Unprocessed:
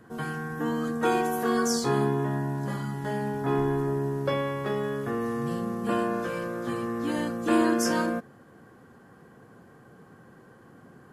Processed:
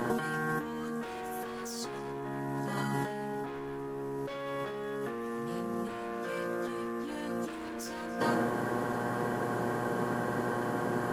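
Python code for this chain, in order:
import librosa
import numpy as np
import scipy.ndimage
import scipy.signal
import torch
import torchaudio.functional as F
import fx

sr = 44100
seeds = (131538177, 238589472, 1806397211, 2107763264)

y = fx.dmg_buzz(x, sr, base_hz=120.0, harmonics=9, level_db=-52.0, tilt_db=-4, odd_only=False)
y = fx.peak_eq(y, sr, hz=89.0, db=-13.0, octaves=1.5)
y = y + 10.0 ** (-22.5 / 20.0) * np.pad(y, (int(286 * sr / 1000.0), 0))[:len(y)]
y = np.clip(y, -10.0 ** (-27.0 / 20.0), 10.0 ** (-27.0 / 20.0))
y = fx.over_compress(y, sr, threshold_db=-44.0, ratio=-1.0)
y = F.gain(torch.from_numpy(y), 9.0).numpy()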